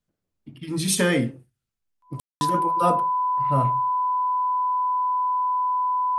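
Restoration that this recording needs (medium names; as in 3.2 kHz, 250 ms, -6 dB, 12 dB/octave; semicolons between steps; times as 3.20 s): band-stop 1 kHz, Q 30; room tone fill 2.20–2.41 s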